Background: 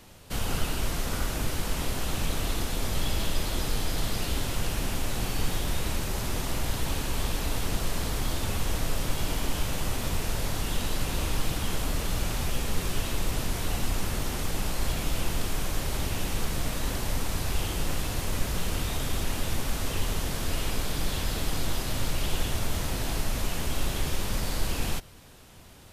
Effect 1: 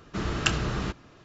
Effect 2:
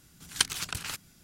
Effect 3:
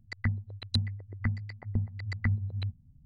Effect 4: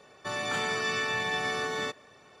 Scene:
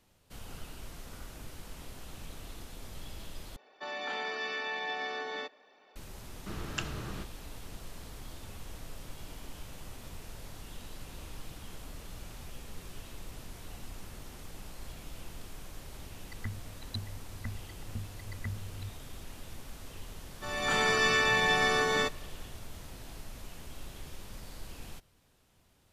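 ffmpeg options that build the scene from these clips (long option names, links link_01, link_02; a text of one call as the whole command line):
ffmpeg -i bed.wav -i cue0.wav -i cue1.wav -i cue2.wav -i cue3.wav -filter_complex "[4:a]asplit=2[link_01][link_02];[0:a]volume=-16.5dB[link_03];[link_01]highpass=frequency=250:width=0.5412,highpass=frequency=250:width=1.3066,equalizer=frequency=360:width_type=q:width=4:gain=-3,equalizer=frequency=810:width_type=q:width=4:gain=5,equalizer=frequency=1200:width_type=q:width=4:gain=-5,lowpass=frequency=4900:width=0.5412,lowpass=frequency=4900:width=1.3066[link_04];[link_02]dynaudnorm=framelen=130:gausssize=7:maxgain=13dB[link_05];[link_03]asplit=2[link_06][link_07];[link_06]atrim=end=3.564[link_08];[link_04]atrim=end=2.4,asetpts=PTS-STARTPTS,volume=-5.5dB[link_09];[link_07]atrim=start=5.956[link_10];[1:a]atrim=end=1.24,asetpts=PTS-STARTPTS,volume=-11dB,afade=type=in:duration=0.004:curve=hsin,afade=type=out:start_time=1.236:duration=0.004:curve=hsin,adelay=6320[link_11];[3:a]atrim=end=3.05,asetpts=PTS-STARTPTS,volume=-10dB,afade=type=in:duration=0.004:curve=hsin,afade=type=out:start_time=3.046:duration=0.004:curve=hsin,adelay=714420S[link_12];[link_05]atrim=end=2.4,asetpts=PTS-STARTPTS,volume=-9dB,afade=type=in:duration=0.004:curve=hsin,afade=type=out:start_time=2.396:duration=0.004:curve=hsin,adelay=20170[link_13];[link_08][link_09]acrossfade=duration=0.004:curve1=hsin:curve2=hsin[link_14];[link_14][link_10]acrossfade=duration=0.004:curve1=hsin:curve2=hsin[link_15];[link_15][link_11][link_12][link_13]amix=inputs=4:normalize=0" out.wav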